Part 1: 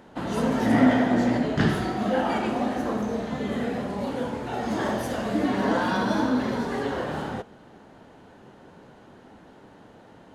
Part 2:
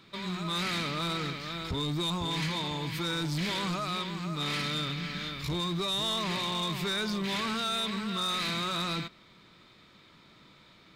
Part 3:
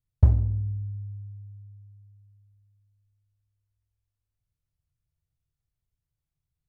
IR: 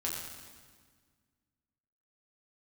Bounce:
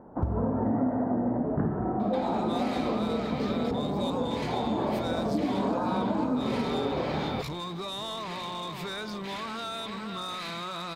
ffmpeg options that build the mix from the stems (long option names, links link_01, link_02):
-filter_complex "[0:a]lowpass=frequency=1100:width=0.5412,lowpass=frequency=1100:width=1.3066,volume=1dB[link_01];[1:a]equalizer=frequency=770:width=0.83:gain=9,acompressor=threshold=-35dB:ratio=6,adelay=2000,volume=1dB[link_02];[2:a]volume=-6dB[link_03];[link_01][link_02][link_03]amix=inputs=3:normalize=0,acompressor=threshold=-24dB:ratio=6"